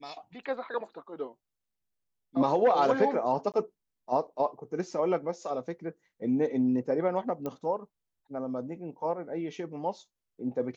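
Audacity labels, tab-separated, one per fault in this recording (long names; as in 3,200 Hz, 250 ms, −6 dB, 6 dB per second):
3.520000	3.540000	drop-out 18 ms
7.460000	7.460000	click −22 dBFS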